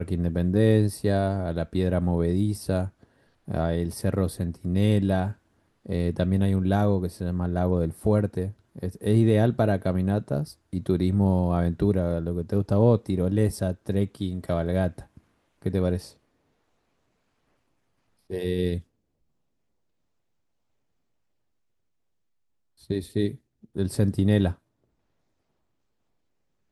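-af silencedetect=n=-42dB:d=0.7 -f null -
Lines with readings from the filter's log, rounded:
silence_start: 16.11
silence_end: 18.30 | silence_duration: 2.19
silence_start: 18.81
silence_end: 22.84 | silence_duration: 4.03
silence_start: 24.54
silence_end: 26.71 | silence_duration: 2.18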